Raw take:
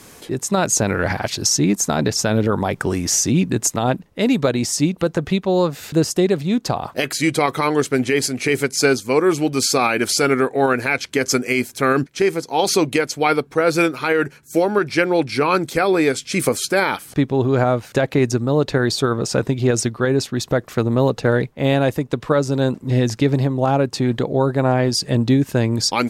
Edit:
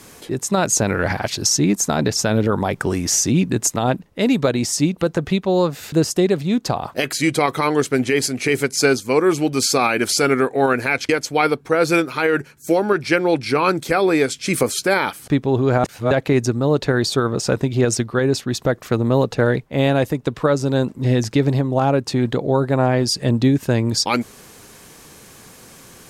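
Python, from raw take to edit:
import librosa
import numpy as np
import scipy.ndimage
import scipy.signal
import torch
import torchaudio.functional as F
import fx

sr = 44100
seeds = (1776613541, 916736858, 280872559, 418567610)

y = fx.edit(x, sr, fx.cut(start_s=11.09, length_s=1.86),
    fx.reverse_span(start_s=17.7, length_s=0.27), tone=tone)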